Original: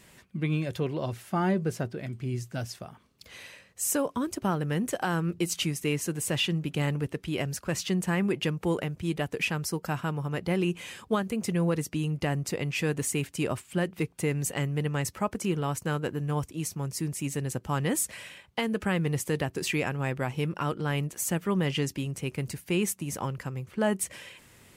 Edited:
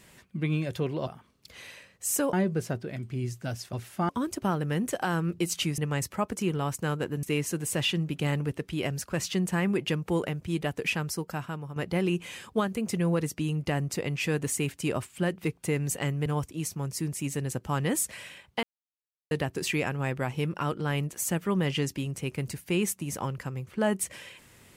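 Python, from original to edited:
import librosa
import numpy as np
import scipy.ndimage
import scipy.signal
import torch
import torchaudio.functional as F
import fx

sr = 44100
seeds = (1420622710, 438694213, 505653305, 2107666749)

y = fx.edit(x, sr, fx.swap(start_s=1.07, length_s=0.36, other_s=2.83, other_length_s=1.26),
    fx.fade_out_to(start_s=9.53, length_s=0.78, floor_db=-8.5),
    fx.move(start_s=14.81, length_s=1.45, to_s=5.78),
    fx.silence(start_s=18.63, length_s=0.68), tone=tone)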